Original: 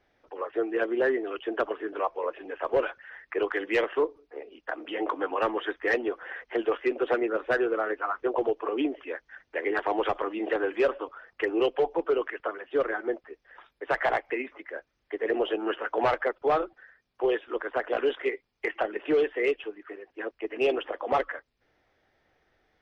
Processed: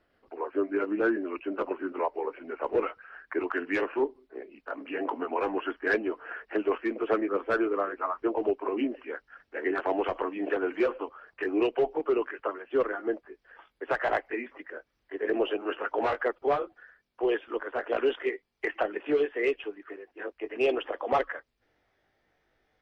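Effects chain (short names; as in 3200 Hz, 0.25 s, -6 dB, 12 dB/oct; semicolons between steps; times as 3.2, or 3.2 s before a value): gliding pitch shift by -2.5 st ending unshifted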